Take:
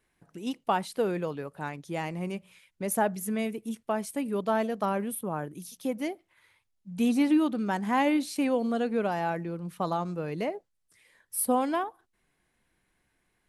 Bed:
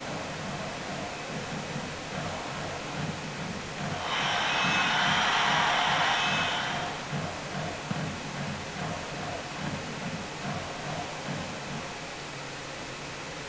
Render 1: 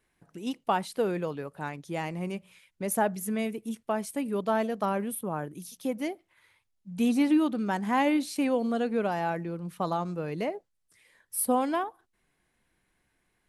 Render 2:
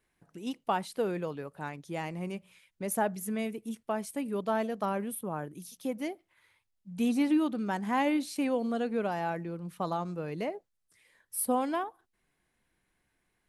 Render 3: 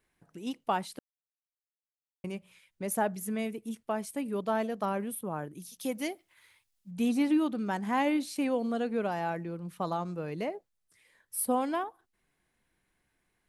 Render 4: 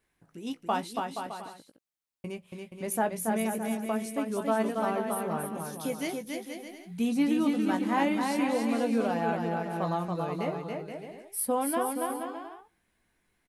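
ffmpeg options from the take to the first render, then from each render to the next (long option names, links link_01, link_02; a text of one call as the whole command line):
ffmpeg -i in.wav -af anull out.wav
ffmpeg -i in.wav -af "volume=-3dB" out.wav
ffmpeg -i in.wav -filter_complex "[0:a]asettb=1/sr,asplit=3[link_01][link_02][link_03];[link_01]atrim=end=5.794[link_04];[link_02]atrim=start=5.79:end=6.91,asetpts=PTS-STARTPTS,afade=type=in:duration=0.004:curve=qsin,afade=type=out:start_time=1.116:duration=0.004:curve=qsin,highshelf=frequency=2300:gain=9.5[link_05];[link_03]atrim=start=6.906[link_06];[link_04][link_05]acrossfade=duration=0.004:curve1=hsin:curve2=qsin[link_07];[link_07][link_06]acrossfade=duration=0.004:curve1=qsin:curve2=hsin,asplit=3[link_08][link_09][link_10];[link_08]atrim=end=0.99,asetpts=PTS-STARTPTS,afade=type=out:start_time=0.986:duration=0.004:curve=hsin[link_11];[link_09]atrim=start=0.99:end=2.24,asetpts=PTS-STARTPTS,volume=0[link_12];[link_10]atrim=start=2.24,asetpts=PTS-STARTPTS,afade=type=in:duration=0.004:curve=hsin[link_13];[link_11][link_12][link_13]concat=n=3:v=0:a=1" out.wav
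ffmpeg -i in.wav -filter_complex "[0:a]asplit=2[link_01][link_02];[link_02]adelay=18,volume=-8.5dB[link_03];[link_01][link_03]amix=inputs=2:normalize=0,aecho=1:1:280|476|613.2|709.2|776.5:0.631|0.398|0.251|0.158|0.1" out.wav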